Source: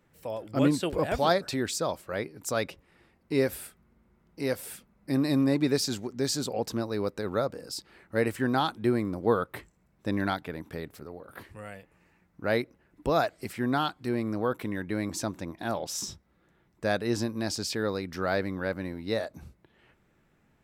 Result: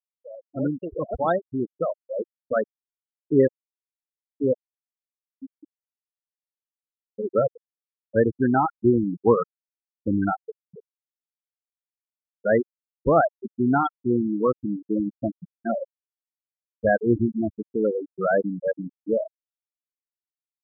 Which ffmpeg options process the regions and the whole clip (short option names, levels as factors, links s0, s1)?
-filter_complex "[0:a]asettb=1/sr,asplit=3[s0][s1][s2];[s0]atrim=end=4.614[s3];[s1]atrim=start=4.61:end=7.1,asetpts=PTS-STARTPTS,afade=t=in:d=0.004:c=qsin,afade=t=out:st=2.486:d=0.004:c=qsin,acrossover=split=680[s4][s5];[s4]aeval=exprs='val(0)*(1-1/2+1/2*cos(2*PI*3.6*n/s))':c=same[s6];[s5]aeval=exprs='val(0)*(1-1/2-1/2*cos(2*PI*3.6*n/s))':c=same[s7];[s6][s7]amix=inputs=2:normalize=0,acompressor=threshold=0.0141:ratio=6:attack=3.2:release=140:knee=1:detection=peak,equalizer=f=510:t=o:w=0.95:g=-5[s8];[s2]atrim=start=7.096[s9];[s3][s8]acrossfade=d=0.004:c1=hsin:c2=qsin[s10];[s10][s9]acrossfade=d=0.004:c1=qsin:c2=hsin,afftfilt=real='re*gte(hypot(re,im),0.141)':imag='im*gte(hypot(re,im),0.141)':win_size=1024:overlap=0.75,dynaudnorm=f=270:g=11:m=3.98,volume=0.708"